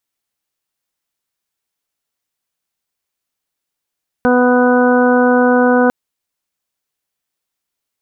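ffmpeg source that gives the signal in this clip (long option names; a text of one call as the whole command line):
ffmpeg -f lavfi -i "aevalsrc='0.251*sin(2*PI*248*t)+0.237*sin(2*PI*496*t)+0.126*sin(2*PI*744*t)+0.0891*sin(2*PI*992*t)+0.0631*sin(2*PI*1240*t)+0.119*sin(2*PI*1488*t)':duration=1.65:sample_rate=44100" out.wav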